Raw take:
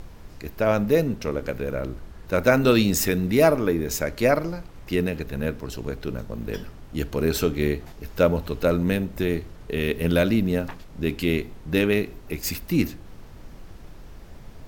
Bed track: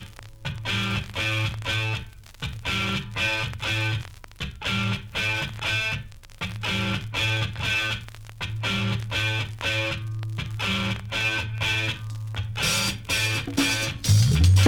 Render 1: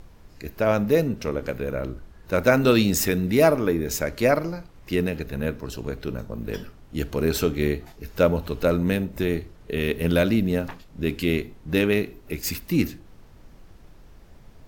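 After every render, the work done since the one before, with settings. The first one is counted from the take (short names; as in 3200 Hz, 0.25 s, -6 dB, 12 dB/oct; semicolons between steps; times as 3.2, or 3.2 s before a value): noise print and reduce 6 dB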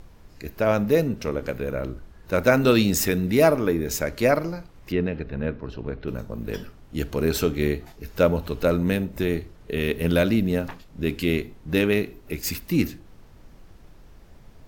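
4.92–6.08 air absorption 290 m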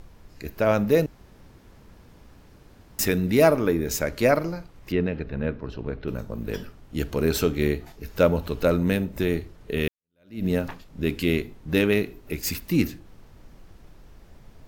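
1.06–2.99 room tone; 9.88–10.45 fade in exponential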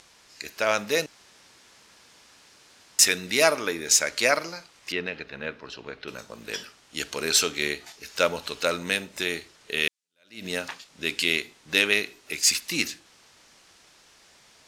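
weighting filter ITU-R 468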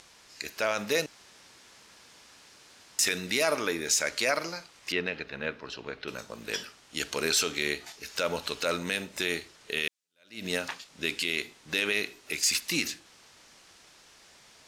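limiter -14.5 dBFS, peak gain reduction 10.5 dB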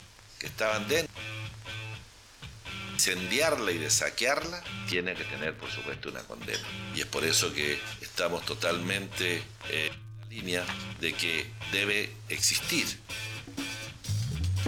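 add bed track -13.5 dB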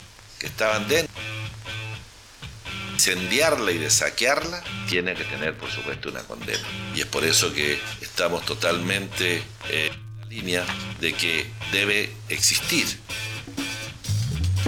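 gain +6.5 dB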